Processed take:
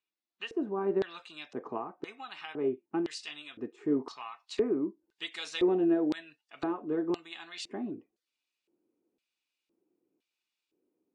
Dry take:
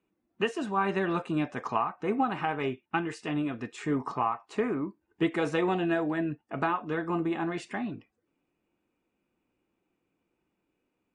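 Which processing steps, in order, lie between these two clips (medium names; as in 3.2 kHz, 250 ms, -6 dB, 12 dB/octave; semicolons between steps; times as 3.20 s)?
LFO band-pass square 0.98 Hz 360–4100 Hz; treble shelf 3.9 kHz -3.5 dB, from 1.22 s +4 dB, from 3.11 s +11.5 dB; trim +4 dB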